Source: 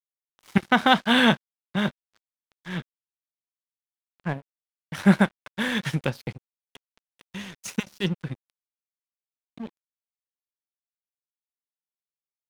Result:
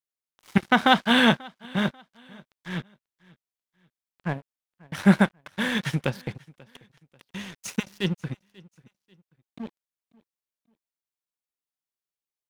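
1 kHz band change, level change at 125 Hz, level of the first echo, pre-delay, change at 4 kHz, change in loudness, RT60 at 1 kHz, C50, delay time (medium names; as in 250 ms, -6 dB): 0.0 dB, 0.0 dB, -24.0 dB, no reverb, 0.0 dB, 0.0 dB, no reverb, no reverb, 539 ms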